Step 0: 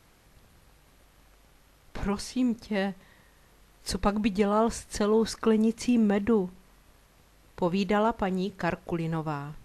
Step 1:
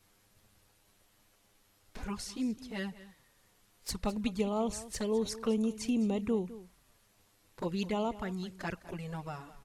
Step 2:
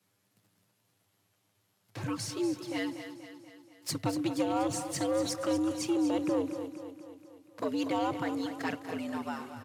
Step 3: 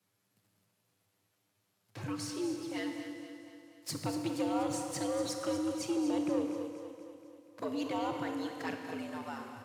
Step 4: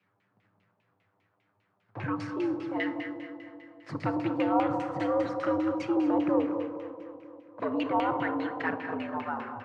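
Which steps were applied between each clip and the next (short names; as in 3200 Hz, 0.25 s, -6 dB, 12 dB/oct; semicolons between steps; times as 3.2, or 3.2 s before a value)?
high shelf 3700 Hz +8 dB; envelope flanger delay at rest 10.6 ms, full sweep at -21 dBFS; echo 0.207 s -16.5 dB; gain -6.5 dB
sample leveller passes 2; frequency shift +92 Hz; feedback echo 0.24 s, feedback 56%, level -10.5 dB; gain -3.5 dB
Schroeder reverb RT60 2.1 s, combs from 27 ms, DRR 5.5 dB; gain -4.5 dB
LFO low-pass saw down 5 Hz 800–2600 Hz; gain +5 dB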